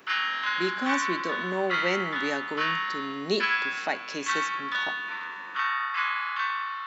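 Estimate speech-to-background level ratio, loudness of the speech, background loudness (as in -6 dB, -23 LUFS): -4.0 dB, -32.5 LUFS, -28.5 LUFS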